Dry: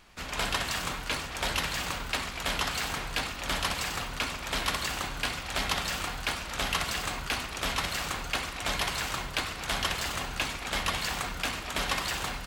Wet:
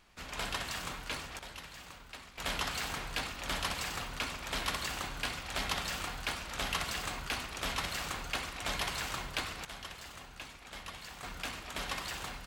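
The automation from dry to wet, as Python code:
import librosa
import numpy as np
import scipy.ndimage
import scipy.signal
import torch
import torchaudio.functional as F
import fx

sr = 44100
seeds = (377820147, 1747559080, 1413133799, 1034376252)

y = fx.gain(x, sr, db=fx.steps((0.0, -7.0), (1.39, -17.0), (2.38, -5.0), (9.65, -15.5), (11.23, -8.0)))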